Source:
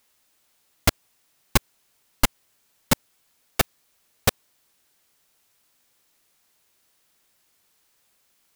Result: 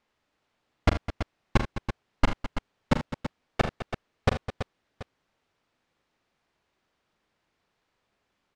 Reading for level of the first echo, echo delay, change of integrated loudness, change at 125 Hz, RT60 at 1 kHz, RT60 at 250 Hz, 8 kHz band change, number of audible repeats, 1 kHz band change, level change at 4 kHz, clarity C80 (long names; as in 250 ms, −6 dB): −9.5 dB, 41 ms, −6.0 dB, +1.0 dB, no reverb audible, no reverb audible, −20.0 dB, 5, −1.5 dB, −9.5 dB, no reverb audible